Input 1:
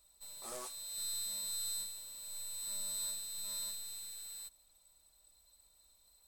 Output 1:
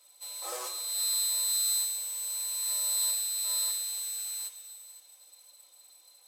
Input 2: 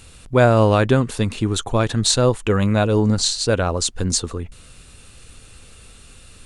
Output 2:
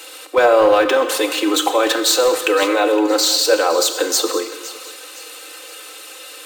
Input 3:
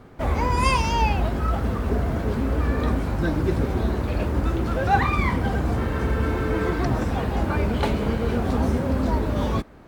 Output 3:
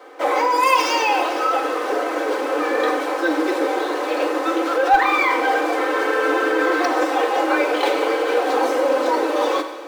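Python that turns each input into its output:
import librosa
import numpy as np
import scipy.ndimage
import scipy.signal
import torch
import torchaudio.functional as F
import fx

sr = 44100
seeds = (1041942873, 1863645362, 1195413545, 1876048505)

p1 = scipy.signal.sosfilt(scipy.signal.butter(16, 310.0, 'highpass', fs=sr, output='sos'), x)
p2 = p1 + 0.82 * np.pad(p1, (int(3.9 * sr / 1000.0), 0))[:len(p1)]
p3 = fx.over_compress(p2, sr, threshold_db=-25.0, ratio=-0.5)
p4 = p2 + F.gain(torch.from_numpy(p3), -1.0).numpy()
p5 = np.clip(p4, -10.0 ** (-8.0 / 20.0), 10.0 ** (-8.0 / 20.0))
p6 = p5 + fx.echo_thinned(p5, sr, ms=514, feedback_pct=41, hz=970.0, wet_db=-15.0, dry=0)
p7 = fx.rev_gated(p6, sr, seeds[0], gate_ms=430, shape='falling', drr_db=7.0)
p8 = np.interp(np.arange(len(p7)), np.arange(len(p7))[::2], p7[::2])
y = F.gain(torch.from_numpy(p8), 1.0).numpy()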